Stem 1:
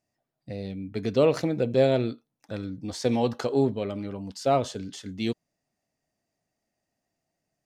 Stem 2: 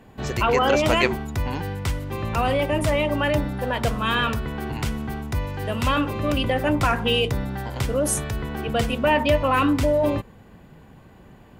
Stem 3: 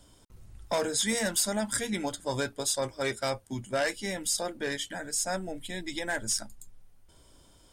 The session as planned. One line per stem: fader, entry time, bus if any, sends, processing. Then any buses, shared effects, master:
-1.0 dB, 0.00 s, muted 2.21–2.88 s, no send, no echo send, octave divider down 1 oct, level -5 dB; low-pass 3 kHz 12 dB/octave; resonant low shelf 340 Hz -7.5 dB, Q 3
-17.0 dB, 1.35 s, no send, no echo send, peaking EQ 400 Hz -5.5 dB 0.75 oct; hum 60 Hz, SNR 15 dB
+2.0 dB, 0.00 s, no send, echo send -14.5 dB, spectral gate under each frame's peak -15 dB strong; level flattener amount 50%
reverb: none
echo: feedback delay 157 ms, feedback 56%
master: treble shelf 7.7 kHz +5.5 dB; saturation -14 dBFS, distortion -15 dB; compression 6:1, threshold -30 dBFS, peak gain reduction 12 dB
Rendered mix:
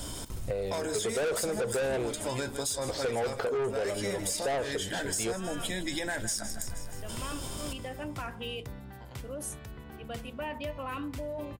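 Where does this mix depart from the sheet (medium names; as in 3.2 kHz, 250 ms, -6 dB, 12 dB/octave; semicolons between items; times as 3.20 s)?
stem 1 -1.0 dB -> +11.0 dB; stem 2: missing peaking EQ 400 Hz -5.5 dB 0.75 oct; stem 3: missing spectral gate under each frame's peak -15 dB strong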